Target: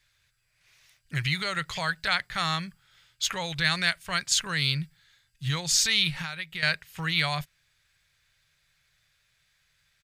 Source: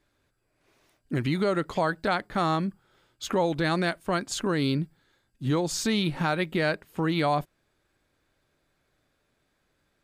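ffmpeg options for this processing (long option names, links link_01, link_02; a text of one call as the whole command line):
ffmpeg -i in.wav -filter_complex "[0:a]firequalizer=gain_entry='entry(150,0);entry(240,-23);entry(510,-12);entry(1900,8);entry(6000,10);entry(8700,6)':delay=0.05:min_phase=1,asettb=1/sr,asplit=3[link_01][link_02][link_03];[link_01]atrim=end=6.104[link_04];[link_02]atrim=start=6.1:end=6.63,asetpts=PTS-STARTPTS,afade=type=in:duration=0.004:curve=qsin,afade=type=out:start_time=0.526:duration=0.004:curve=qsin,acompressor=threshold=-32dB:ratio=6[link_05];[link_03]atrim=start=6.626[link_06];[link_04][link_05]acrossfade=duration=0.004:curve1=hsin:curve2=qsin[link_07];[link_07][link_06]acrossfade=duration=0.004:curve1=qsin:curve2=hsin" out.wav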